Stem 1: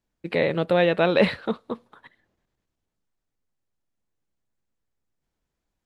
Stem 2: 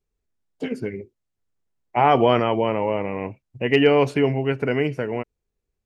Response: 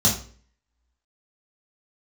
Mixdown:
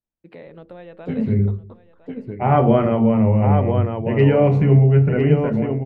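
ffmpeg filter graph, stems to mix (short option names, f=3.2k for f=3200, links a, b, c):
-filter_complex "[0:a]acompressor=threshold=-25dB:ratio=2.5,volume=-11.5dB,asplit=2[a][b];[b]volume=-16dB[c];[1:a]aemphasis=mode=reproduction:type=bsi,adelay=450,volume=-0.5dB,asplit=3[d][e][f];[e]volume=-19dB[g];[f]volume=-6dB[h];[2:a]atrim=start_sample=2205[i];[g][i]afir=irnorm=-1:irlink=0[j];[c][h]amix=inputs=2:normalize=0,aecho=0:1:1007:1[k];[a][d][j][k]amix=inputs=4:normalize=0,highshelf=f=2.1k:g=-11,bandreject=f=47.7:t=h:w=4,bandreject=f=95.4:t=h:w=4,bandreject=f=143.1:t=h:w=4,bandreject=f=190.8:t=h:w=4,bandreject=f=238.5:t=h:w=4,bandreject=f=286.2:t=h:w=4,bandreject=f=333.9:t=h:w=4,bandreject=f=381.6:t=h:w=4,bandreject=f=429.3:t=h:w=4,bandreject=f=477:t=h:w=4,bandreject=f=524.7:t=h:w=4"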